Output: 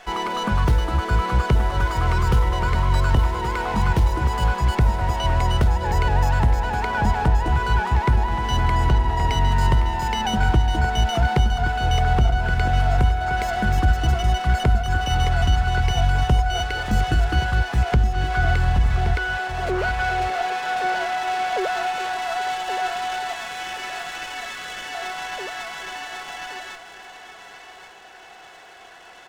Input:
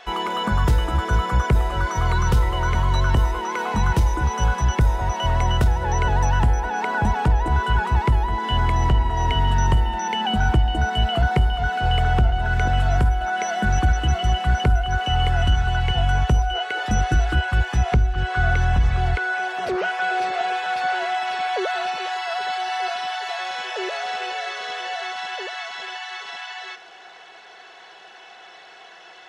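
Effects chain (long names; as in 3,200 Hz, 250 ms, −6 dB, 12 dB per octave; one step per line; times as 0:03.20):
0:23.33–0:24.95: high-pass filter 1,200 Hz 12 dB per octave
single-tap delay 1,123 ms −10.5 dB
windowed peak hold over 5 samples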